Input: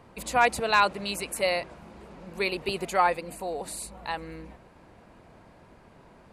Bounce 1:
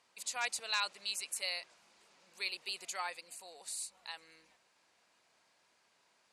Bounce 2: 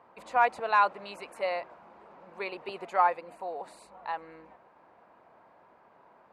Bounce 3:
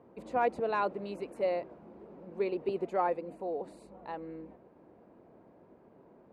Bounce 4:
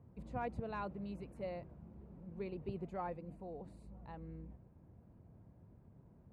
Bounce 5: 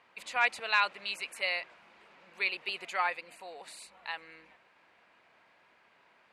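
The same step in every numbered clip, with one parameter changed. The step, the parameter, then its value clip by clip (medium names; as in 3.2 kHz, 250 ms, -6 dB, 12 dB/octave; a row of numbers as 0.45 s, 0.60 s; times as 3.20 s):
band-pass filter, frequency: 6.1 kHz, 950 Hz, 370 Hz, 100 Hz, 2.4 kHz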